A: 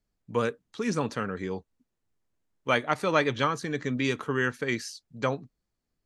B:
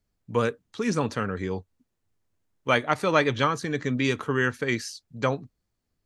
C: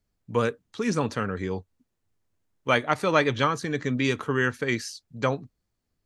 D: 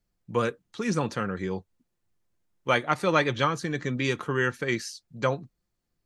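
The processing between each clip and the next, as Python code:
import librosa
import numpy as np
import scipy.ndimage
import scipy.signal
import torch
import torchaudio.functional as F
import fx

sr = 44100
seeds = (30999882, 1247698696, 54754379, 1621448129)

y1 = fx.peak_eq(x, sr, hz=94.0, db=6.5, octaves=0.5)
y1 = F.gain(torch.from_numpy(y1), 2.5).numpy()
y2 = y1
y3 = y2 + 0.34 * np.pad(y2, (int(5.7 * sr / 1000.0), 0))[:len(y2)]
y3 = F.gain(torch.from_numpy(y3), -1.5).numpy()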